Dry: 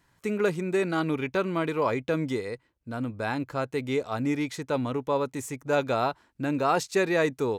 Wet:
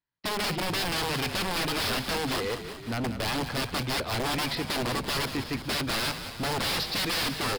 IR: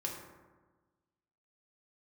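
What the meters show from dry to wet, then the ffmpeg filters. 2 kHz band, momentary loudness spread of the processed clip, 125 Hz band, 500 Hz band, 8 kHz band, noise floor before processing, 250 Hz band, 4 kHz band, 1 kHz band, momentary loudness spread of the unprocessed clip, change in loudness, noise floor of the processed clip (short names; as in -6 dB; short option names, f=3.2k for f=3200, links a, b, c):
+2.5 dB, 5 LU, 0.0 dB, -7.0 dB, +7.5 dB, -68 dBFS, -4.0 dB, +13.0 dB, -1.5 dB, 8 LU, -0.5 dB, -41 dBFS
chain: -filter_complex "[0:a]agate=range=-33dB:threshold=-54dB:ratio=16:detection=peak,bandreject=f=50:t=h:w=6,bandreject=f=100:t=h:w=6,bandreject=f=150:t=h:w=6,bandreject=f=200:t=h:w=6,bandreject=f=250:t=h:w=6,aresample=11025,aeval=exprs='(mod(18.8*val(0)+1,2)-1)/18.8':c=same,aresample=44100,highshelf=f=3.2k:g=9.5,asoftclip=type=hard:threshold=-33dB,asplit=2[a][b];[b]asplit=8[c][d][e][f][g][h][i][j];[c]adelay=184,afreqshift=-49,volume=-10dB[k];[d]adelay=368,afreqshift=-98,volume=-13.9dB[l];[e]adelay=552,afreqshift=-147,volume=-17.8dB[m];[f]adelay=736,afreqshift=-196,volume=-21.6dB[n];[g]adelay=920,afreqshift=-245,volume=-25.5dB[o];[h]adelay=1104,afreqshift=-294,volume=-29.4dB[p];[i]adelay=1288,afreqshift=-343,volume=-33.3dB[q];[j]adelay=1472,afreqshift=-392,volume=-37.1dB[r];[k][l][m][n][o][p][q][r]amix=inputs=8:normalize=0[s];[a][s]amix=inputs=2:normalize=0,volume=5.5dB"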